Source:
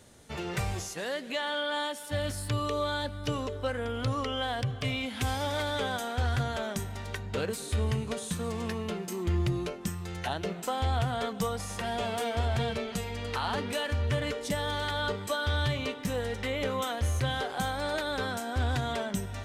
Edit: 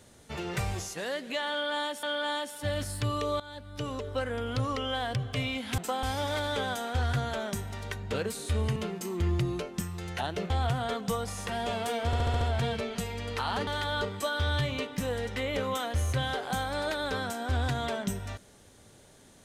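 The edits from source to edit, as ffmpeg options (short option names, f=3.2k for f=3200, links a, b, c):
-filter_complex "[0:a]asplit=13[a][b][c][d][e][f][g][h][i][j][k][l][m];[a]atrim=end=2.032[n];[b]atrim=start=1.508:end=2.88,asetpts=PTS-STARTPTS,afade=t=out:st=1.368:d=0.004:c=hsin:silence=0.125893[o];[c]atrim=start=2.88:end=5.262,asetpts=PTS-STARTPTS,afade=t=in:d=0.72:silence=0.125893[p];[d]atrim=start=10.568:end=10.822[q];[e]atrim=start=5.258:end=7.992[r];[f]atrim=start=8.828:end=10.572[s];[g]atrim=start=10.818:end=12.452[t];[h]atrim=start=12.378:end=12.452[u];[i]atrim=start=12.378:end=12.452[v];[j]atrim=start=12.378:end=12.452[w];[k]atrim=start=12.378:end=12.452[x];[l]atrim=start=12.378:end=13.642[y];[m]atrim=start=14.738[z];[o][p]concat=n=2:v=0:a=1[aa];[n][aa]acrossfade=d=0.004:c1=hsin:c2=hsin[ab];[ab][q]acrossfade=d=0.004:c1=hsin:c2=hsin[ac];[ac][r]acrossfade=d=0.004:c1=hsin:c2=hsin[ad];[ad][s]acrossfade=d=0.004:c1=hsin:c2=hsin[ae];[ae][t]acrossfade=d=0.004:c1=hsin:c2=hsin[af];[af][u]acrossfade=d=0.004:c1=hsin:c2=hsin[ag];[ag][v]acrossfade=d=0.004:c1=hsin:c2=hsin[ah];[ah][w]acrossfade=d=0.004:c1=hsin:c2=hsin[ai];[ai][x]acrossfade=d=0.004:c1=hsin:c2=hsin[aj];[aj][y]acrossfade=d=0.004:c1=hsin:c2=hsin[ak];[ak][z]acrossfade=d=0.004:c1=hsin:c2=hsin"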